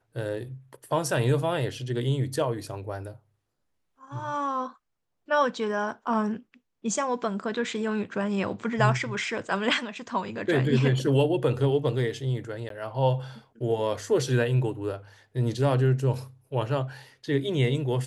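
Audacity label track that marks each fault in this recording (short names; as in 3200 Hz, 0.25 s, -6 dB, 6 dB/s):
12.690000	12.700000	gap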